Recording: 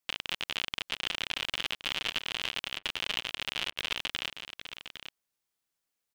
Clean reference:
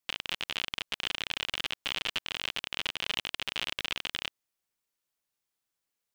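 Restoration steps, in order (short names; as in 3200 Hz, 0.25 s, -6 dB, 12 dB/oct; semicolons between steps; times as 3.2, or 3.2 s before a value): clip repair -14.5 dBFS; interpolate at 2.79/3.71, 55 ms; inverse comb 0.807 s -10 dB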